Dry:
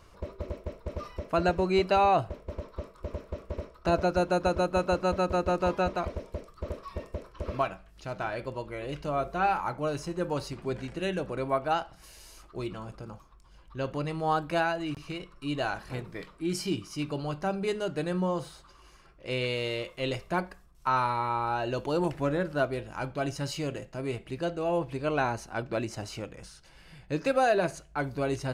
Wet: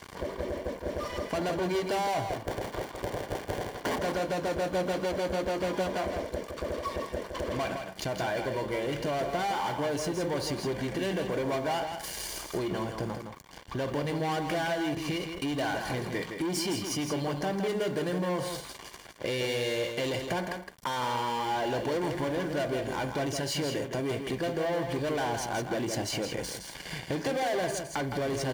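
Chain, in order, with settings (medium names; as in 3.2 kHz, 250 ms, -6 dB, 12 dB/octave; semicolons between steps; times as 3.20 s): 2.30–3.99 s: cycle switcher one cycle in 2, inverted; peaking EQ 110 Hz -2 dB 2.3 oct; waveshaping leveller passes 5; compression 12:1, threshold -29 dBFS, peak gain reduction 12.5 dB; bit crusher 10-bit; comb of notches 1.3 kHz; delay 164 ms -6.5 dB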